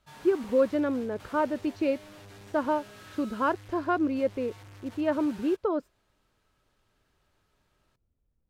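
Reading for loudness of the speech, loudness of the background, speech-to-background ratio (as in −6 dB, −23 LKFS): −29.0 LKFS, −49.0 LKFS, 20.0 dB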